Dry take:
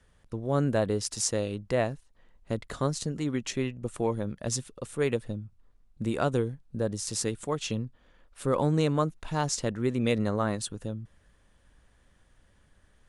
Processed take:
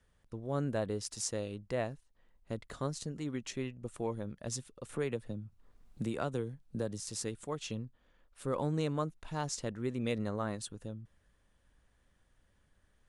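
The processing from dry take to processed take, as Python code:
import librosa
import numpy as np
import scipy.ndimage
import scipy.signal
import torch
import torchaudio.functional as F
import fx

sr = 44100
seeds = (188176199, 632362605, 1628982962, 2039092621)

y = fx.band_squash(x, sr, depth_pct=70, at=(4.89, 7.0))
y = F.gain(torch.from_numpy(y), -8.0).numpy()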